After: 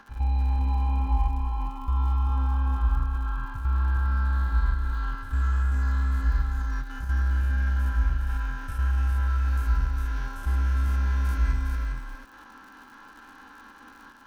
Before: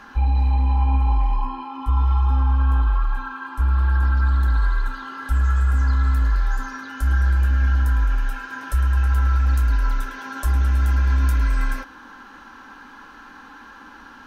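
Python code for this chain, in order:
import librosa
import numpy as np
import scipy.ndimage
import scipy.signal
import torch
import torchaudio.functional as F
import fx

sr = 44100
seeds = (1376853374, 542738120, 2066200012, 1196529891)

y = fx.spec_steps(x, sr, hold_ms=100)
y = fx.level_steps(y, sr, step_db=9)
y = fx.dmg_crackle(y, sr, seeds[0], per_s=91.0, level_db=-39.0)
y = y + 10.0 ** (-4.5 / 20.0) * np.pad(y, (int(408 * sr / 1000.0), 0))[:len(y)]
y = y * librosa.db_to_amplitude(-4.5)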